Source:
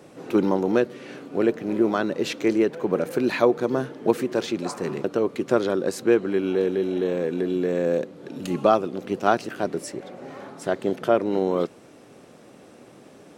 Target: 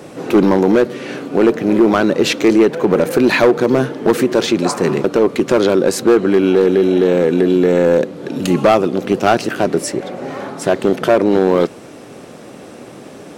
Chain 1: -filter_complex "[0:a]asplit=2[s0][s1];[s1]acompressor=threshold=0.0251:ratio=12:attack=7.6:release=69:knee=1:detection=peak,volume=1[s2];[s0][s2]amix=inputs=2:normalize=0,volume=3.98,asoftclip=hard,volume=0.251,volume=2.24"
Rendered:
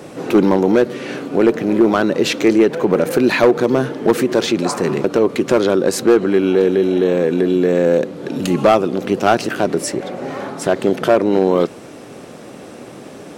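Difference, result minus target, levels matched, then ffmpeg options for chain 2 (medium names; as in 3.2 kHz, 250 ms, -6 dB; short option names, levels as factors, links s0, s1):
compression: peak gain reduction +8 dB
-filter_complex "[0:a]asplit=2[s0][s1];[s1]acompressor=threshold=0.0668:ratio=12:attack=7.6:release=69:knee=1:detection=peak,volume=1[s2];[s0][s2]amix=inputs=2:normalize=0,volume=3.98,asoftclip=hard,volume=0.251,volume=2.24"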